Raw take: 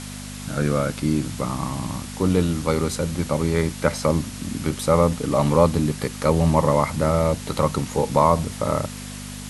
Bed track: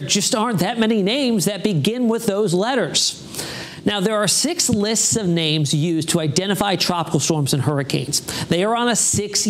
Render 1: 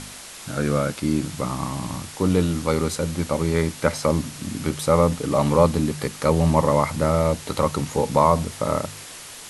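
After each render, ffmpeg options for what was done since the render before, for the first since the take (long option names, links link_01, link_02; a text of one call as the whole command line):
ffmpeg -i in.wav -af "bandreject=frequency=50:width_type=h:width=4,bandreject=frequency=100:width_type=h:width=4,bandreject=frequency=150:width_type=h:width=4,bandreject=frequency=200:width_type=h:width=4,bandreject=frequency=250:width_type=h:width=4" out.wav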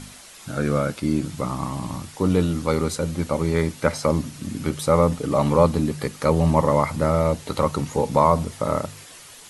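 ffmpeg -i in.wav -af "afftdn=noise_reduction=7:noise_floor=-40" out.wav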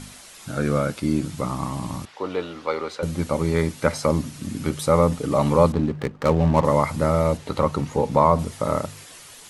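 ffmpeg -i in.wav -filter_complex "[0:a]asettb=1/sr,asplit=3[link_01][link_02][link_03];[link_01]atrim=end=2.054[link_04];[link_02]atrim=start=2.05:end=3.03,asetpts=PTS-STARTPTS,afade=type=in:duration=0.004:curve=qsin,afade=type=out:start_time=0.976:duration=0.004:curve=qsin,acrossover=split=380 4500:gain=0.0794 1 0.0708[link_05][link_06][link_07];[link_05][link_06][link_07]amix=inputs=3:normalize=0[link_08];[link_03]atrim=start=3.026[link_09];[link_04][link_08]acrossfade=duration=0.004:curve1=hsin:curve2=qsin[link_10];[link_10][link_09]acrossfade=duration=0.004:curve1=qsin:curve2=hsin,asettb=1/sr,asplit=3[link_11][link_12][link_13];[link_11]atrim=end=5.724[link_14];[link_12]atrim=start=5.72:end=6.65,asetpts=PTS-STARTPTS,afade=type=in:duration=0.004:curve=qsin,afade=type=out:start_time=0.926:duration=0.004:curve=qsin,adynamicsmooth=sensitivity=4.5:basefreq=570[link_15];[link_13]atrim=start=6.646[link_16];[link_14][link_15]acrossfade=duration=0.004:curve1=hsin:curve2=qsin[link_17];[link_17][link_16]acrossfade=duration=0.004:curve1=qsin:curve2=hsin,asettb=1/sr,asplit=3[link_18][link_19][link_20];[link_18]atrim=end=7.374[link_21];[link_19]atrim=start=7.37:end=8.39,asetpts=PTS-STARTPTS,afade=type=in:duration=0.004:curve=qsin,afade=type=out:start_time=1.016:duration=0.004:curve=qsin,aemphasis=mode=reproduction:type=cd[link_22];[link_20]atrim=start=8.386[link_23];[link_21][link_22]acrossfade=duration=0.004:curve1=hsin:curve2=qsin[link_24];[link_24][link_23]acrossfade=duration=0.004:curve1=qsin:curve2=hsin" out.wav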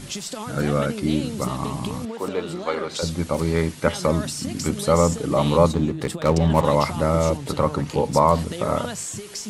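ffmpeg -i in.wav -i bed.wav -filter_complex "[1:a]volume=-14dB[link_01];[0:a][link_01]amix=inputs=2:normalize=0" out.wav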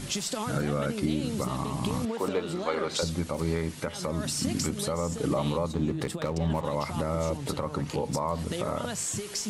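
ffmpeg -i in.wav -af "acompressor=threshold=-19dB:ratio=6,alimiter=limit=-17dB:level=0:latency=1:release=324" out.wav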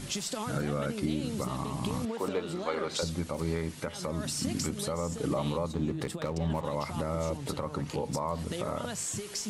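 ffmpeg -i in.wav -af "volume=-3dB" out.wav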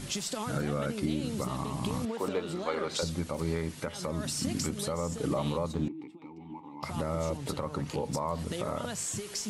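ffmpeg -i in.wav -filter_complex "[0:a]asettb=1/sr,asplit=3[link_01][link_02][link_03];[link_01]atrim=end=5.884[link_04];[link_02]atrim=start=5.88:end=6.83,asetpts=PTS-STARTPTS,afade=type=in:duration=0.004:curve=qsin,afade=type=out:start_time=0.946:duration=0.004:curve=qsin,asplit=3[link_05][link_06][link_07];[link_05]bandpass=frequency=300:width_type=q:width=8,volume=0dB[link_08];[link_06]bandpass=frequency=870:width_type=q:width=8,volume=-6dB[link_09];[link_07]bandpass=frequency=2240:width_type=q:width=8,volume=-9dB[link_10];[link_08][link_09][link_10]amix=inputs=3:normalize=0[link_11];[link_03]atrim=start=6.826[link_12];[link_04][link_11]acrossfade=duration=0.004:curve1=hsin:curve2=qsin[link_13];[link_13][link_12]acrossfade=duration=0.004:curve1=qsin:curve2=hsin" out.wav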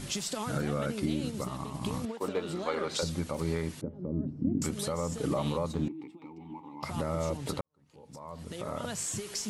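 ffmpeg -i in.wav -filter_complex "[0:a]asplit=3[link_01][link_02][link_03];[link_01]afade=type=out:start_time=1.29:duration=0.02[link_04];[link_02]agate=range=-33dB:threshold=-31dB:ratio=3:release=100:detection=peak,afade=type=in:start_time=1.29:duration=0.02,afade=type=out:start_time=2.4:duration=0.02[link_05];[link_03]afade=type=in:start_time=2.4:duration=0.02[link_06];[link_04][link_05][link_06]amix=inputs=3:normalize=0,asettb=1/sr,asplit=3[link_07][link_08][link_09];[link_07]atrim=end=3.814[link_10];[link_08]atrim=start=3.81:end=4.62,asetpts=PTS-STARTPTS,afade=type=in:duration=0.004:curve=qsin,afade=type=out:start_time=0.806:duration=0.004:curve=qsin,lowpass=frequency=320:width_type=q:width=1.7[link_11];[link_09]atrim=start=4.616[link_12];[link_10][link_11]acrossfade=duration=0.004:curve1=hsin:curve2=qsin[link_13];[link_13][link_12]acrossfade=duration=0.004:curve1=qsin:curve2=hsin,asplit=2[link_14][link_15];[link_14]atrim=end=7.61,asetpts=PTS-STARTPTS,afade=type=out:start_time=7.606:duration=0.004:curve=hsin[link_16];[link_15]atrim=start=7.61,asetpts=PTS-STARTPTS,afade=type=in:duration=1.29:curve=qua[link_17];[link_16][link_17]concat=n=2:v=0:a=1" out.wav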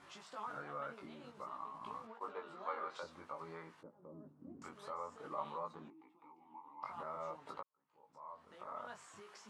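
ffmpeg -i in.wav -af "bandpass=frequency=1100:width_type=q:width=2.3:csg=0,flanger=delay=18:depth=3.6:speed=0.52" out.wav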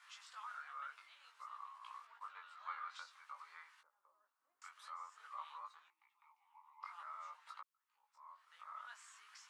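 ffmpeg -i in.wav -af "highpass=frequency=1200:width=0.5412,highpass=frequency=1200:width=1.3066" out.wav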